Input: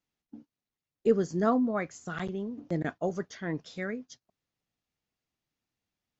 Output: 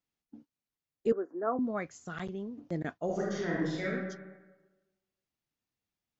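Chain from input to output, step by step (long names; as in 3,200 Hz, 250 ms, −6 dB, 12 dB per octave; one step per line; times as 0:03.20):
0:01.12–0:01.59: elliptic band-pass filter 290–1,500 Hz, stop band 40 dB
0:03.05–0:03.88: thrown reverb, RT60 1.2 s, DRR −6.5 dB
level −4 dB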